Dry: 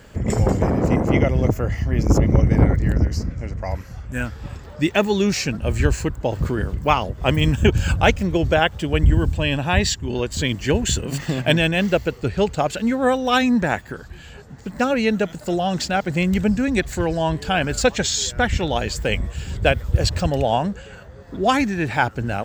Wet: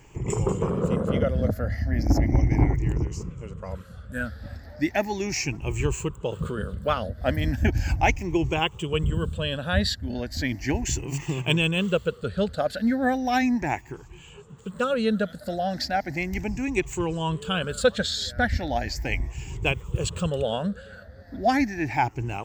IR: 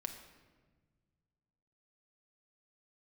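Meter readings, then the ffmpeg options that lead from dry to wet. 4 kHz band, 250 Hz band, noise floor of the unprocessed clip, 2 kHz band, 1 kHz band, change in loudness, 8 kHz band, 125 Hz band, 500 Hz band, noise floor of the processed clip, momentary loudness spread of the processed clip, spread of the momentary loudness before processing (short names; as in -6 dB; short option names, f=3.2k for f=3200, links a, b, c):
-5.5 dB, -5.5 dB, -41 dBFS, -5.5 dB, -5.0 dB, -5.5 dB, -7.0 dB, -6.5 dB, -6.0 dB, -46 dBFS, 10 LU, 10 LU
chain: -af "afftfilt=real='re*pow(10,14/40*sin(2*PI*(0.71*log(max(b,1)*sr/1024/100)/log(2)-(0.36)*(pts-256)/sr)))':imag='im*pow(10,14/40*sin(2*PI*(0.71*log(max(b,1)*sr/1024/100)/log(2)-(0.36)*(pts-256)/sr)))':win_size=1024:overlap=0.75,volume=-8dB"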